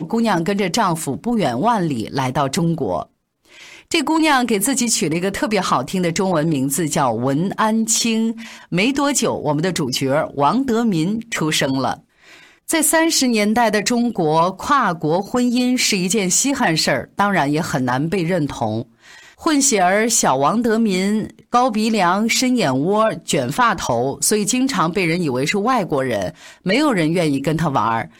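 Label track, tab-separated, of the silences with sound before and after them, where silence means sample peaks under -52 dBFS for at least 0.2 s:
3.080000	3.450000	silence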